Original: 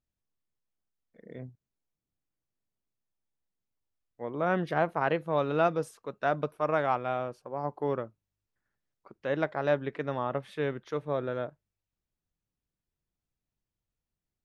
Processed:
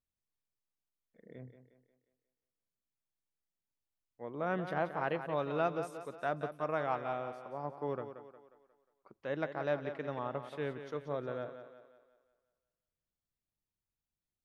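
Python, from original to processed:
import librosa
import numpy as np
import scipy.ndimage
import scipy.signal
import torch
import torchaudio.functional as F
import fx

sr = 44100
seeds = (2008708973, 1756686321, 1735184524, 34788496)

y = fx.echo_thinned(x, sr, ms=179, feedback_pct=47, hz=180.0, wet_db=-9.5)
y = F.gain(torch.from_numpy(y), -7.0).numpy()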